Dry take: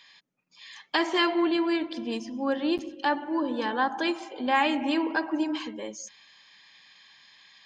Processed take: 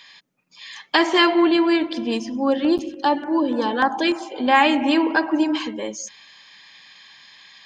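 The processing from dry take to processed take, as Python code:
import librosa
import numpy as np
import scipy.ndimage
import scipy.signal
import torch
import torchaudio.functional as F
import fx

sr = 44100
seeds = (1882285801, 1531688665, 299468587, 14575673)

y = fx.filter_lfo_notch(x, sr, shape='saw_down', hz=3.4, low_hz=720.0, high_hz=4500.0, q=1.3, at=(2.33, 4.33), fade=0.02)
y = y * librosa.db_to_amplitude(8.0)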